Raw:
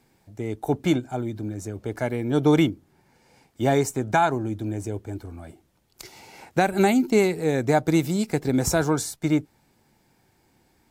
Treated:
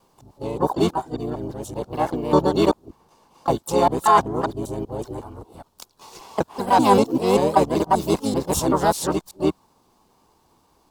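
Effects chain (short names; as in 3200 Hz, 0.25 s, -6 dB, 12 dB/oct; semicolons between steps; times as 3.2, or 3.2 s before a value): local time reversal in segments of 0.194 s; harmoniser -12 st -8 dB, +4 st -1 dB, +12 st -15 dB; ten-band EQ 125 Hz -5 dB, 1000 Hz +10 dB, 2000 Hz -11 dB, 4000 Hz +4 dB; gain -1.5 dB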